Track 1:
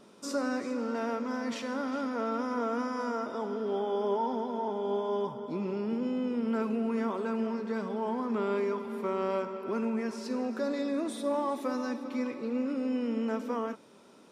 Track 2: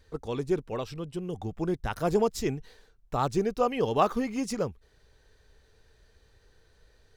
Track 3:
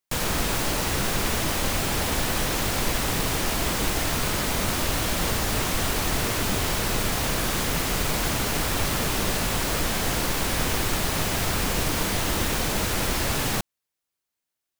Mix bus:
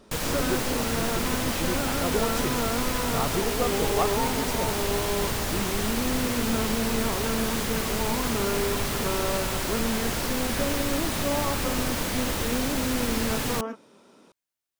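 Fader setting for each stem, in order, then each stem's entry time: +1.5, −3.0, −3.5 decibels; 0.00, 0.00, 0.00 seconds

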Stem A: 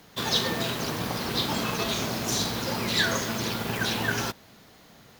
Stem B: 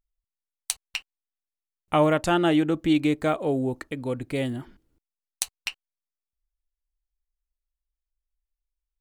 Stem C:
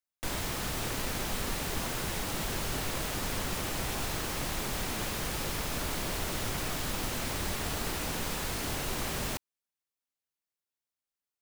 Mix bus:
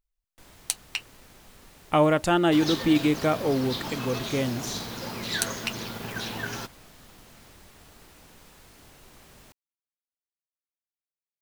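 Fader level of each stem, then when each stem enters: −6.0, 0.0, −18.5 decibels; 2.35, 0.00, 0.15 seconds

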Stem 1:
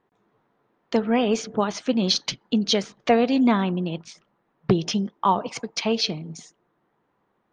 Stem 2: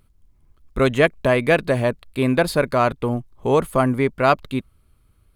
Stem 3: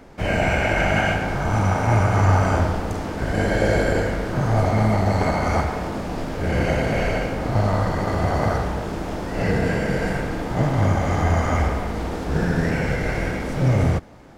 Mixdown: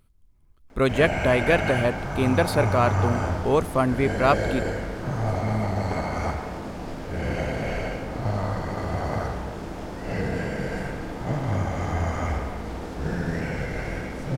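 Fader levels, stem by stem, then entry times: muted, −3.5 dB, −6.5 dB; muted, 0.00 s, 0.70 s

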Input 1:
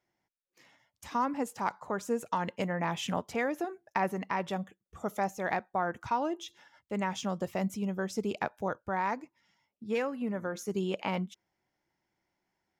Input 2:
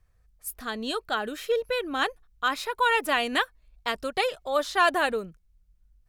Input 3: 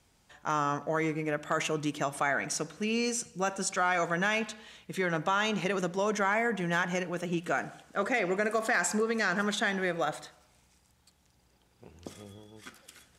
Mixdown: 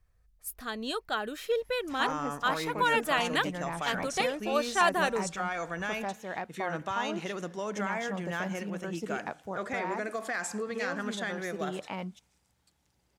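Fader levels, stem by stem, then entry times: −5.0, −3.5, −6.0 decibels; 0.85, 0.00, 1.60 seconds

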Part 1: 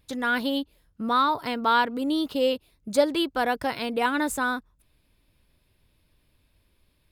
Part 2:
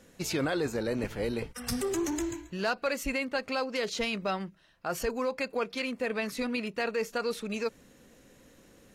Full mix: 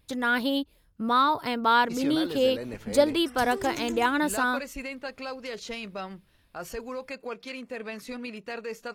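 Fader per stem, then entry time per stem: 0.0, −5.0 decibels; 0.00, 1.70 seconds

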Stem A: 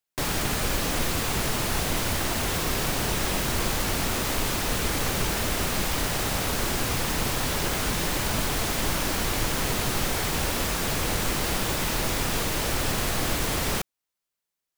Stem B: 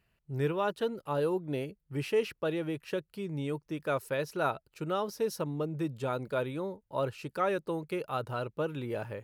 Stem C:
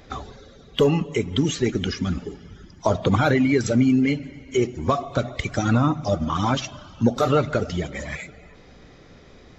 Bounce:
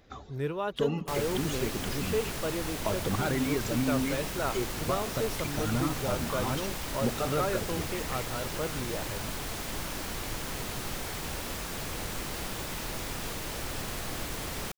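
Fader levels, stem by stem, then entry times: −9.5, −2.0, −11.5 decibels; 0.90, 0.00, 0.00 seconds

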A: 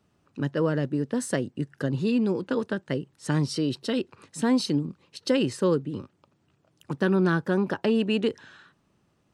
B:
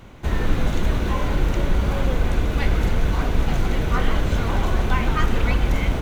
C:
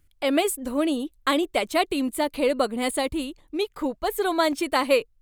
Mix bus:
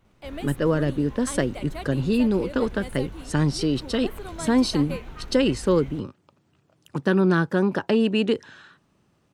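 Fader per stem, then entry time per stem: +3.0, −19.5, −15.0 decibels; 0.05, 0.00, 0.00 seconds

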